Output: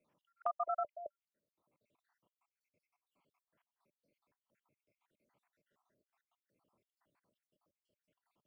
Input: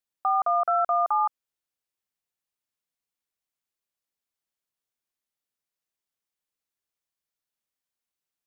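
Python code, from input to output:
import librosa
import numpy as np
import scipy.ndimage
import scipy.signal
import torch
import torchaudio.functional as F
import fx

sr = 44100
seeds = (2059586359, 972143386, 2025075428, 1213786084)

y = fx.spec_dropout(x, sr, seeds[0], share_pct=76)
y = fx.low_shelf(y, sr, hz=390.0, db=11.5)
y = fx.level_steps(y, sr, step_db=16)
y = fx.small_body(y, sr, hz=(590.0, 990.0), ring_ms=45, db=7)
y = fx.band_squash(y, sr, depth_pct=70)
y = y * librosa.db_to_amplitude(-2.0)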